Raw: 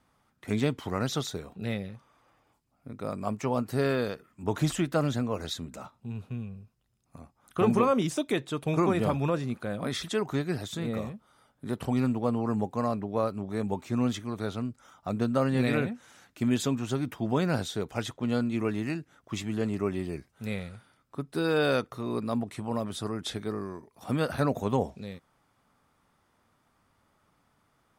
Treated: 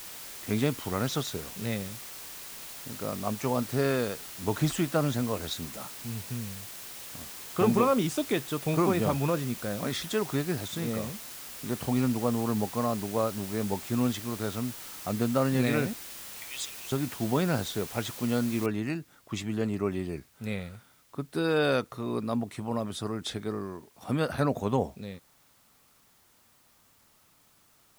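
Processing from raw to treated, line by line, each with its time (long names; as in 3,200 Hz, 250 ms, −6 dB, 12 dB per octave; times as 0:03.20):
0:15.93–0:16.92: linear-phase brick-wall band-pass 1,800–10,000 Hz
0:18.66: noise floor change −43 dB −64 dB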